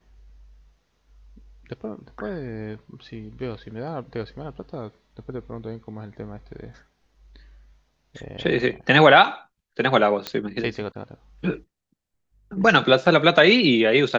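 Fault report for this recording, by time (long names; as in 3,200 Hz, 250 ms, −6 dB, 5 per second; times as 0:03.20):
0:10.27: click −12 dBFS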